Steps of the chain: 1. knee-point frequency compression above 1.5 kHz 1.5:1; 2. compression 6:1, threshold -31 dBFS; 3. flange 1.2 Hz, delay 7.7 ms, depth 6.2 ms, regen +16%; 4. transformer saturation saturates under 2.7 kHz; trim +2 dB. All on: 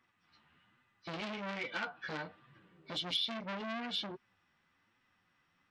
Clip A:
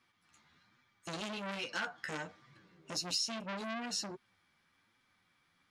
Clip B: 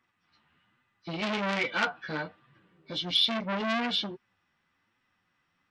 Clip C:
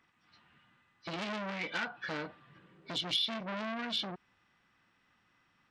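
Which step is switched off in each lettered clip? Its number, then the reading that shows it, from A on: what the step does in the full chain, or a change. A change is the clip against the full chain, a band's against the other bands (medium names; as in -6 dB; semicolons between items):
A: 1, 8 kHz band +17.0 dB; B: 2, mean gain reduction 7.5 dB; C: 3, 8 kHz band +2.0 dB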